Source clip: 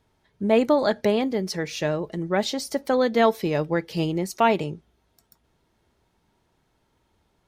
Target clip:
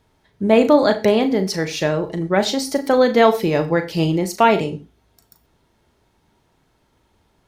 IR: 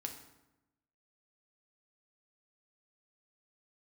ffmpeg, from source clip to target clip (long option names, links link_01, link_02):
-filter_complex "[0:a]asplit=2[link_01][link_02];[1:a]atrim=start_sample=2205,atrim=end_sample=4410,adelay=37[link_03];[link_02][link_03]afir=irnorm=-1:irlink=0,volume=-6.5dB[link_04];[link_01][link_04]amix=inputs=2:normalize=0,volume=5.5dB"